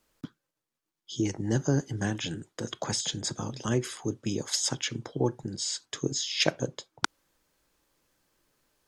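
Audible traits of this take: noise floor -86 dBFS; spectral tilt -4.0 dB/octave

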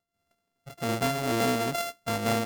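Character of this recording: a buzz of ramps at a fixed pitch in blocks of 64 samples; random flutter of the level

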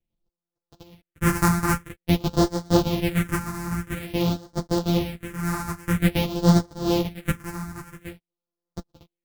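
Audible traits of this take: a buzz of ramps at a fixed pitch in blocks of 256 samples; phasing stages 4, 0.49 Hz, lowest notch 520–2500 Hz; random-step tremolo; a shimmering, thickened sound

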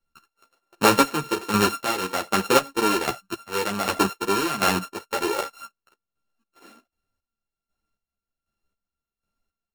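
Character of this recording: a buzz of ramps at a fixed pitch in blocks of 32 samples; chopped level 1.3 Hz, depth 65%, duty 35%; a shimmering, thickened sound

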